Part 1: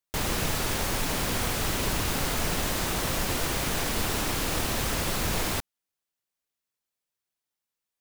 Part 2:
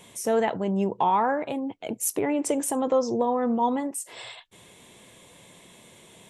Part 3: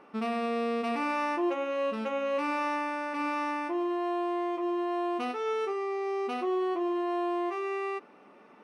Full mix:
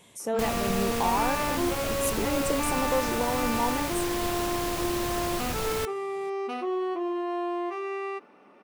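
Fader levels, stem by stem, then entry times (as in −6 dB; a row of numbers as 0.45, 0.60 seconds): −4.5, −5.0, 0.0 decibels; 0.25, 0.00, 0.20 seconds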